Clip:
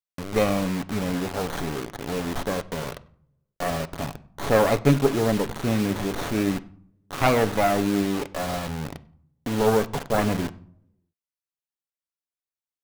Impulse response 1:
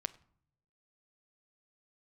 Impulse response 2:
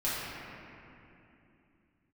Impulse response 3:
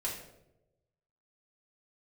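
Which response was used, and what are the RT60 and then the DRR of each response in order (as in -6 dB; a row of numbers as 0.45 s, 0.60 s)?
1; 0.60 s, 2.8 s, 0.95 s; 11.0 dB, -10.5 dB, -6.0 dB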